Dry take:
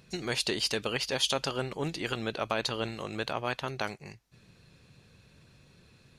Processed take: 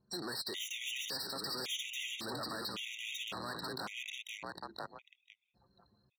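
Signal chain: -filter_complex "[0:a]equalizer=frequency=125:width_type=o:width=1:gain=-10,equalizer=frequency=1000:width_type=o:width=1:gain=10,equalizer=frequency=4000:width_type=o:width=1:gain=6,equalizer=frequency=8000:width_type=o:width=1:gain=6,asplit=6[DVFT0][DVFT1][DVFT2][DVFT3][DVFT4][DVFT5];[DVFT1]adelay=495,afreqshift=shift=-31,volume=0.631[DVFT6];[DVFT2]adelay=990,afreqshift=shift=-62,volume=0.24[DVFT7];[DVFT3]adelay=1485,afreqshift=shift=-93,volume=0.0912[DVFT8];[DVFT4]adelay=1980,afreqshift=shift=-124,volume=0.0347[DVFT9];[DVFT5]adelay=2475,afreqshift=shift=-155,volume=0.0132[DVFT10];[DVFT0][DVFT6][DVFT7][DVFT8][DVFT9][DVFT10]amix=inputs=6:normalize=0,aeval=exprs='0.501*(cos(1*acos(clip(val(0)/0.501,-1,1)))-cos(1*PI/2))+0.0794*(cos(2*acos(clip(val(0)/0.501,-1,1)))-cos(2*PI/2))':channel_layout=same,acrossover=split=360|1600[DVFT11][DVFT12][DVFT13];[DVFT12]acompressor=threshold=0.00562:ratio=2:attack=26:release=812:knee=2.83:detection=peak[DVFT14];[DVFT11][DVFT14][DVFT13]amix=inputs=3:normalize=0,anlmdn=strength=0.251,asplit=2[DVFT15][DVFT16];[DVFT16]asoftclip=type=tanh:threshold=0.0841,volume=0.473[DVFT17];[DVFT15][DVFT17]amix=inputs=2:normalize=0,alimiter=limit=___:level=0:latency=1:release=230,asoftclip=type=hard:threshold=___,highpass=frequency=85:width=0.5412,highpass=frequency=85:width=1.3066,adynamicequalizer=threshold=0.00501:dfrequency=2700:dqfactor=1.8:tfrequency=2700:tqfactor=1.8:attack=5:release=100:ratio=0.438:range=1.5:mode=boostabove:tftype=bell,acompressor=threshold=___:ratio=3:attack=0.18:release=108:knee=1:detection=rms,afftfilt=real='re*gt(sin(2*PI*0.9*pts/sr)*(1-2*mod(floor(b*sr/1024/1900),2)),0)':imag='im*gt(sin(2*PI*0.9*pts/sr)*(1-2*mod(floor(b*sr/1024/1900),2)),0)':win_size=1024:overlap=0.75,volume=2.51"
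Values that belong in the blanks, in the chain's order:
0.168, 0.0251, 0.00501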